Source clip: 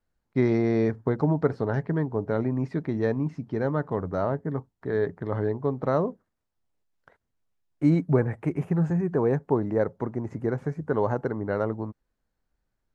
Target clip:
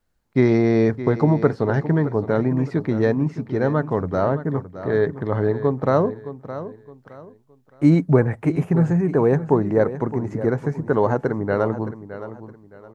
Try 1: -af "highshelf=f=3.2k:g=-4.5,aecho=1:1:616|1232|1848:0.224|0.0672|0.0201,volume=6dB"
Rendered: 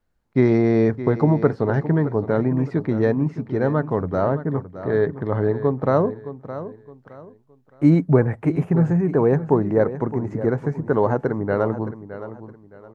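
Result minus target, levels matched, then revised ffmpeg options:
8000 Hz band -6.0 dB
-af "highshelf=f=3.2k:g=3,aecho=1:1:616|1232|1848:0.224|0.0672|0.0201,volume=6dB"

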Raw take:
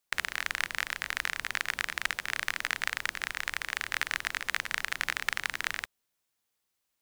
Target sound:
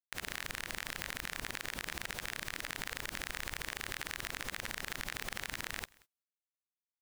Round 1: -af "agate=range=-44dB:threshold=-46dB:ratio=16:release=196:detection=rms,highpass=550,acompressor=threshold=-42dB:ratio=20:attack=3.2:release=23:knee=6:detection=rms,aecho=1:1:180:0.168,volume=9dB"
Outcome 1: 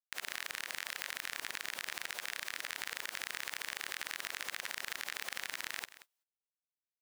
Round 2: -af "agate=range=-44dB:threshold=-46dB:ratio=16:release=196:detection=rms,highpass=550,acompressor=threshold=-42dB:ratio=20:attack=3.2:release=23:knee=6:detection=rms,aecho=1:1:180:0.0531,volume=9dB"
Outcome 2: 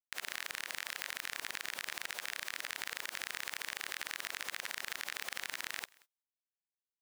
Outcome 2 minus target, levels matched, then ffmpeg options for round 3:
500 Hz band -4.5 dB
-af "agate=range=-44dB:threshold=-46dB:ratio=16:release=196:detection=rms,acompressor=threshold=-42dB:ratio=20:attack=3.2:release=23:knee=6:detection=rms,aecho=1:1:180:0.0531,volume=9dB"

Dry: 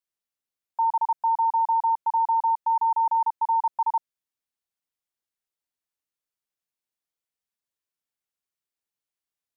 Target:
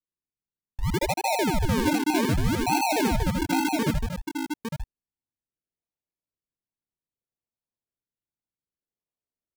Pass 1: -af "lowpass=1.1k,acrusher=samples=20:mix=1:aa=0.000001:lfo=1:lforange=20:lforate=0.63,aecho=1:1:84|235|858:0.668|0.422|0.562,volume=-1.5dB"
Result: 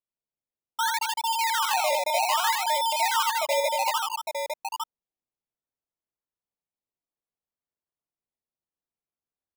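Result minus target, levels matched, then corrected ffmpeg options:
decimation with a swept rate: distortion -22 dB
-af "lowpass=1.1k,acrusher=samples=50:mix=1:aa=0.000001:lfo=1:lforange=50:lforate=0.63,aecho=1:1:84|235|858:0.668|0.422|0.562,volume=-1.5dB"

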